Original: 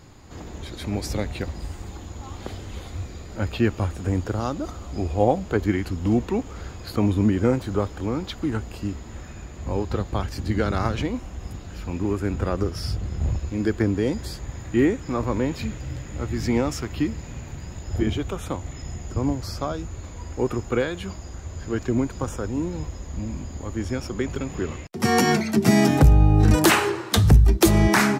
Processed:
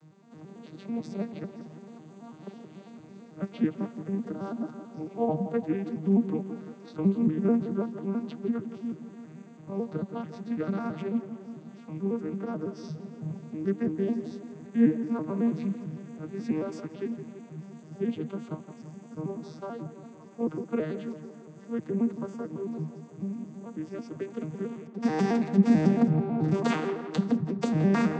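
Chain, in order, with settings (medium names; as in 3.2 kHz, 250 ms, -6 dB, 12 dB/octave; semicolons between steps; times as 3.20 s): vocoder on a broken chord major triad, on D#3, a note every 110 ms; on a send: tape echo 169 ms, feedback 63%, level -10 dB, low-pass 2.2 kHz; on the sum: trim -5 dB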